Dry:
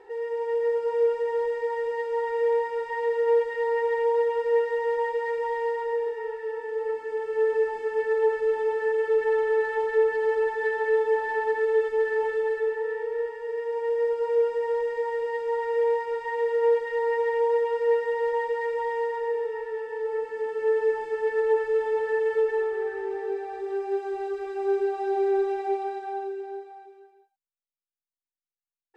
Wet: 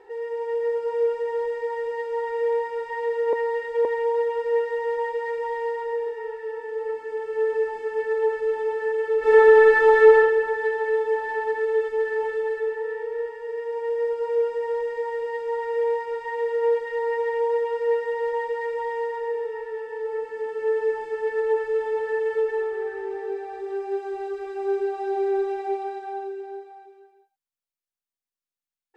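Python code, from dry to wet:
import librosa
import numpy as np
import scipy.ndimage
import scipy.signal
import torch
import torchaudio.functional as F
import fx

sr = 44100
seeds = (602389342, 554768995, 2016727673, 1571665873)

y = fx.reverb_throw(x, sr, start_s=9.19, length_s=0.95, rt60_s=1.5, drr_db=-11.5)
y = fx.edit(y, sr, fx.reverse_span(start_s=3.33, length_s=0.52), tone=tone)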